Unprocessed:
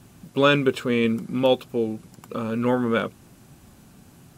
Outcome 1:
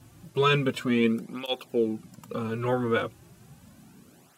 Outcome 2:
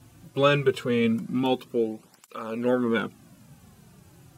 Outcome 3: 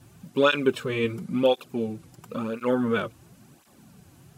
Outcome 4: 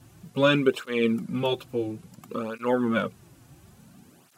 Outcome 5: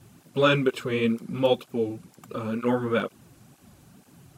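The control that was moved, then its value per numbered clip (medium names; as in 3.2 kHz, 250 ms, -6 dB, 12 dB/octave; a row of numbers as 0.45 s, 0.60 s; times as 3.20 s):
cancelling through-zero flanger, nulls at: 0.34 Hz, 0.22 Hz, 0.96 Hz, 0.58 Hz, 2.1 Hz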